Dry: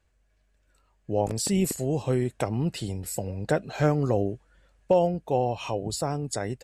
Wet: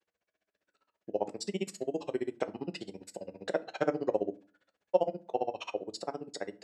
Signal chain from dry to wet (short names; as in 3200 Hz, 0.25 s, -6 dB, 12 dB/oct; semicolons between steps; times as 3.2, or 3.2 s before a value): grains 44 ms, grains 15/s, spray 23 ms, pitch spread up and down by 0 st; Chebyshev band-pass 360–5100 Hz, order 2; reverb RT60 0.40 s, pre-delay 5 ms, DRR 11.5 dB